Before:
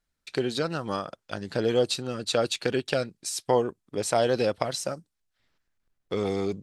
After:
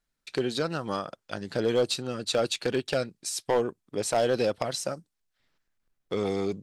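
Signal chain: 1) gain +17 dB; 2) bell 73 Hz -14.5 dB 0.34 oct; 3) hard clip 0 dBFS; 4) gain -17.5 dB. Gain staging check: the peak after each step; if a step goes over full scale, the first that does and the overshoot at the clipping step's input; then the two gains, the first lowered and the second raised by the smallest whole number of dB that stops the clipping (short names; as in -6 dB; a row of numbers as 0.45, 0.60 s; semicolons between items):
+8.5, +9.0, 0.0, -17.5 dBFS; step 1, 9.0 dB; step 1 +8 dB, step 4 -8.5 dB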